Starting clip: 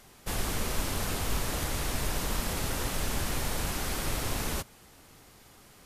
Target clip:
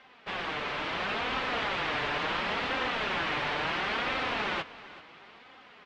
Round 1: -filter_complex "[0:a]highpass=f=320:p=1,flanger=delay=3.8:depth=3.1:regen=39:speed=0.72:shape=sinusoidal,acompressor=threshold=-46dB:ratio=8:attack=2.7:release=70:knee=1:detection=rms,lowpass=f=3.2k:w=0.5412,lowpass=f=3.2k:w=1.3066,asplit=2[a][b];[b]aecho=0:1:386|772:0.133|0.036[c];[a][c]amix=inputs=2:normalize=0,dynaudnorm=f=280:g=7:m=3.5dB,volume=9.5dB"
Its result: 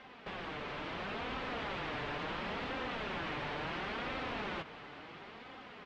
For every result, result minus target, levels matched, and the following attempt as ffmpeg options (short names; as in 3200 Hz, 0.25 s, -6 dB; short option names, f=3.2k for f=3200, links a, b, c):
compressor: peak gain reduction +12 dB; 250 Hz band +5.5 dB
-filter_complex "[0:a]highpass=f=320:p=1,flanger=delay=3.8:depth=3.1:regen=39:speed=0.72:shape=sinusoidal,lowpass=f=3.2k:w=0.5412,lowpass=f=3.2k:w=1.3066,asplit=2[a][b];[b]aecho=0:1:386|772:0.133|0.036[c];[a][c]amix=inputs=2:normalize=0,dynaudnorm=f=280:g=7:m=3.5dB,volume=9.5dB"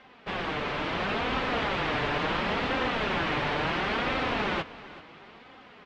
250 Hz band +5.0 dB
-filter_complex "[0:a]highpass=f=900:p=1,flanger=delay=3.8:depth=3.1:regen=39:speed=0.72:shape=sinusoidal,lowpass=f=3.2k:w=0.5412,lowpass=f=3.2k:w=1.3066,asplit=2[a][b];[b]aecho=0:1:386|772:0.133|0.036[c];[a][c]amix=inputs=2:normalize=0,dynaudnorm=f=280:g=7:m=3.5dB,volume=9.5dB"